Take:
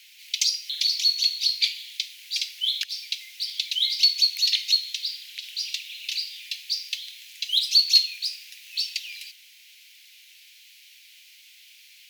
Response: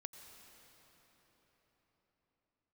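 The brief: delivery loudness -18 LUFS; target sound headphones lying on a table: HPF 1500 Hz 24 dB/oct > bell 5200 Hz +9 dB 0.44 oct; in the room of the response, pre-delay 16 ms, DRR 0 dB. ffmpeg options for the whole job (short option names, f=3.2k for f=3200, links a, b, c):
-filter_complex "[0:a]asplit=2[a][b];[1:a]atrim=start_sample=2205,adelay=16[c];[b][c]afir=irnorm=-1:irlink=0,volume=4.5dB[d];[a][d]amix=inputs=2:normalize=0,highpass=f=1.5k:w=0.5412,highpass=f=1.5k:w=1.3066,equalizer=f=5.2k:t=o:w=0.44:g=9,volume=-1dB"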